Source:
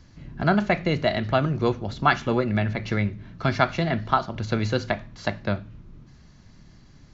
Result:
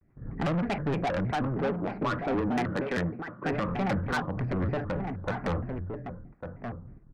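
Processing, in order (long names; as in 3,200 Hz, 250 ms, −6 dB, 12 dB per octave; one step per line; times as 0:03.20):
adaptive Wiener filter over 15 samples
0:01.31–0:03.53: high-pass filter 210 Hz 12 dB per octave
noise gate −42 dBFS, range −16 dB
low-pass filter 2,100 Hz 24 dB per octave
low-shelf EQ 340 Hz −5 dB
brickwall limiter −16 dBFS, peak gain reduction 10.5 dB
rotating-speaker cabinet horn 6 Hz, later 0.75 Hz, at 0:01.14
soft clipping −33 dBFS, distortion −7 dB
slap from a distant wall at 200 metres, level −6 dB
pitch modulation by a square or saw wave square 3.2 Hz, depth 250 cents
level +8 dB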